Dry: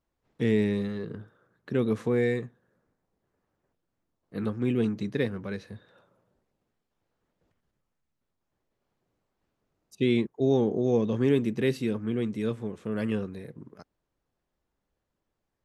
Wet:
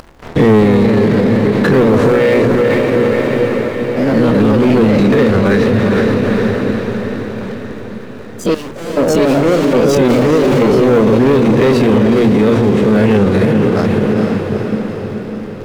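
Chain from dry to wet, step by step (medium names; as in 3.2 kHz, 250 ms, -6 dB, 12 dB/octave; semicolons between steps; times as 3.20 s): every event in the spectrogram widened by 60 ms; low-pass 2.3 kHz 6 dB/octave; hum notches 60/120/180/240/300/360 Hz; in parallel at -1.5 dB: upward compressor, threshold -27 dBFS; on the sum: waveshaping leveller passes 3; 10.08–10.62 s: hard clipper -27 dBFS, distortion -11 dB; ever faster or slower copies 271 ms, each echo +2 st, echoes 2, each echo -6 dB; on a send: echo that smears into a reverb 456 ms, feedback 59%, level -8 dB; on the sum: loudness maximiser +15 dB; trim -3 dB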